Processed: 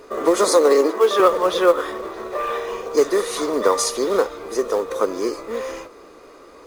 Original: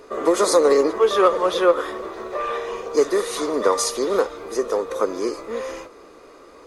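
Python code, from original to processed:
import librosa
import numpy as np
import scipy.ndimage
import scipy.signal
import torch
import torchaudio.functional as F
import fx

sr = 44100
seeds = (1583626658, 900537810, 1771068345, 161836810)

p1 = fx.quant_float(x, sr, bits=2)
p2 = x + (p1 * 10.0 ** (-4.0 / 20.0))
p3 = fx.highpass(p2, sr, hz=210.0, slope=24, at=(0.48, 1.2))
y = p3 * 10.0 ** (-3.0 / 20.0)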